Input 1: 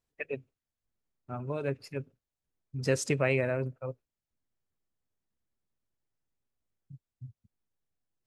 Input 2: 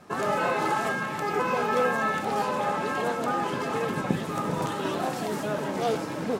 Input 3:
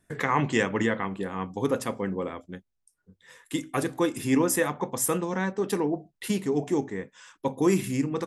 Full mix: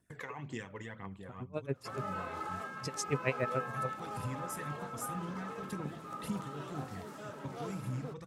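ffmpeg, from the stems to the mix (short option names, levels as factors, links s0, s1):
-filter_complex "[0:a]aeval=exprs='val(0)*pow(10,-34*(0.5-0.5*cos(2*PI*7*n/s))/20)':c=same,volume=1.06,asplit=2[s0][s1];[1:a]equalizer=f=1300:w=5.7:g=9,adelay=1750,volume=0.133[s2];[2:a]asubboost=boost=10:cutoff=120,acompressor=threshold=0.0112:ratio=2,aphaser=in_gain=1:out_gain=1:delay=2.2:decay=0.5:speed=1.9:type=triangular,volume=0.335[s3];[s1]apad=whole_len=364459[s4];[s3][s4]sidechaincompress=threshold=0.00562:ratio=8:attack=6.8:release=181[s5];[s0][s2][s5]amix=inputs=3:normalize=0,highpass=58"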